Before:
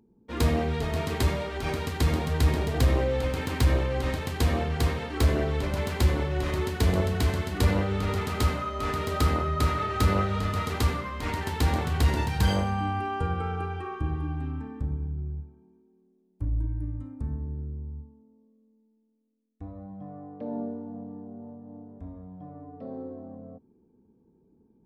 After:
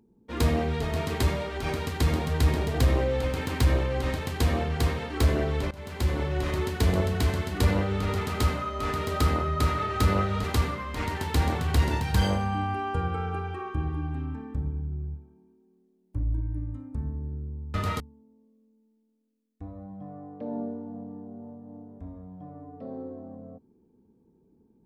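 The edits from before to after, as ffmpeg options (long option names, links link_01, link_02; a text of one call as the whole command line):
ffmpeg -i in.wav -filter_complex "[0:a]asplit=5[link_01][link_02][link_03][link_04][link_05];[link_01]atrim=end=5.71,asetpts=PTS-STARTPTS,afade=type=out:start_time=5.706:duration=0.004:curve=hsin:silence=0.11885[link_06];[link_02]atrim=start=5.71:end=10.442,asetpts=PTS-STARTPTS,afade=type=in:duration=0.56:silence=0.11885[link_07];[link_03]atrim=start=10.698:end=18.002[link_08];[link_04]atrim=start=10.438:end=10.702[link_09];[link_05]atrim=start=17.998[link_10];[link_06][link_07]concat=n=2:v=0:a=1[link_11];[link_11][link_08]acrossfade=duration=0.004:curve1=hsin:curve2=hsin[link_12];[link_12][link_09]acrossfade=duration=0.004:curve1=hsin:curve2=hsin[link_13];[link_13][link_10]acrossfade=duration=0.004:curve1=hsin:curve2=hsin" out.wav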